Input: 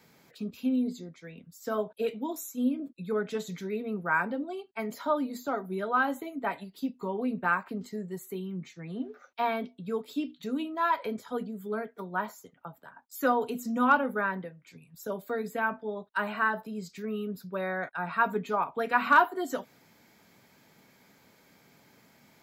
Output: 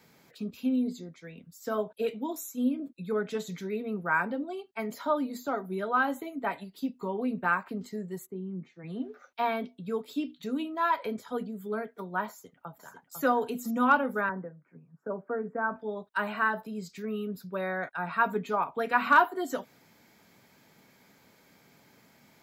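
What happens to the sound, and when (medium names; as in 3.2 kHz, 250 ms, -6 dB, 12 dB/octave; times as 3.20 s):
8.25–8.83 s: band-pass filter 120 Hz -> 630 Hz, Q 0.53
12.29–13.20 s: echo throw 500 ms, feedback 15%, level -6.5 dB
14.29–15.76 s: elliptic band-pass 140–1500 Hz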